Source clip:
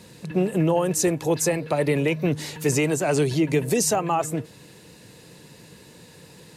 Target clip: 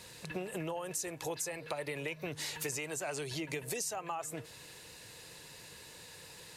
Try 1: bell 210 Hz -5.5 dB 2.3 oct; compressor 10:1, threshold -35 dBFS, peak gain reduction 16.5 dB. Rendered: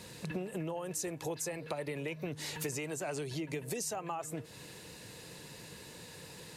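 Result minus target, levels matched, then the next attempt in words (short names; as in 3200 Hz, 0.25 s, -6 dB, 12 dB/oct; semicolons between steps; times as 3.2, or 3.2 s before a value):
250 Hz band +4.0 dB
bell 210 Hz -15 dB 2.3 oct; compressor 10:1, threshold -35 dBFS, peak gain reduction 15 dB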